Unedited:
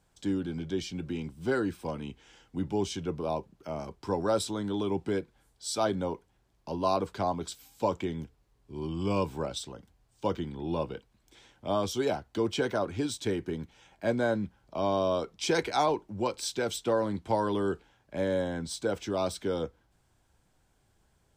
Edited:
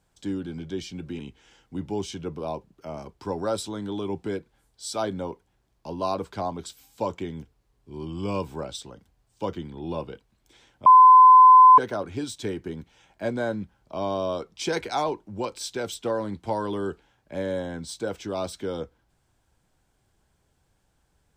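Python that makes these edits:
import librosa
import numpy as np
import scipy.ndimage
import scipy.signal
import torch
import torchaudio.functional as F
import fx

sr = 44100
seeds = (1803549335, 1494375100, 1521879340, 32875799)

y = fx.edit(x, sr, fx.cut(start_s=1.19, length_s=0.82),
    fx.bleep(start_s=11.68, length_s=0.92, hz=1020.0, db=-8.0), tone=tone)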